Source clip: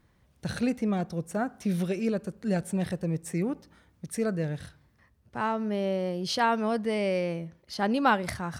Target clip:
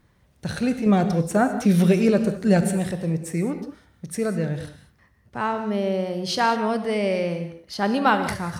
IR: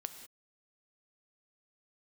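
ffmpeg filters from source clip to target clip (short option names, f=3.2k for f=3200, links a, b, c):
-filter_complex "[0:a]asettb=1/sr,asplit=3[a][b][c];[a]atrim=end=0.864[d];[b]atrim=start=0.86:end=2.72,asetpts=PTS-STARTPTS,afade=t=in:d=0.004:c=qsin,afade=t=out:st=1.856:d=0.004:c=qsin,acontrast=50[e];[c]atrim=start=2.716[f];[d][e]acrossfade=d=0.004:c1=hsin:c2=qsin[g];[g][f]acrossfade=d=0.004:c1=qsin:c2=hsin[h];[1:a]atrim=start_sample=2205,asetrate=42777,aresample=44100[i];[h][i]afir=irnorm=-1:irlink=0,volume=6.5dB"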